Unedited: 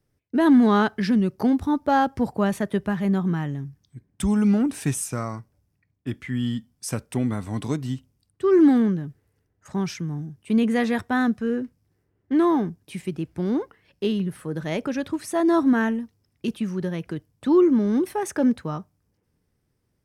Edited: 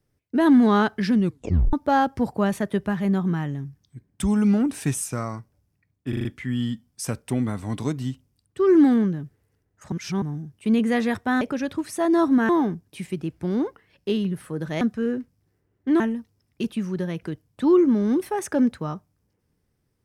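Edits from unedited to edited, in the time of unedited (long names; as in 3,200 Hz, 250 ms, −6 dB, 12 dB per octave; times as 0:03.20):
0:01.24: tape stop 0.49 s
0:06.09: stutter 0.04 s, 5 plays
0:09.76–0:10.06: reverse
0:11.25–0:12.44: swap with 0:14.76–0:15.84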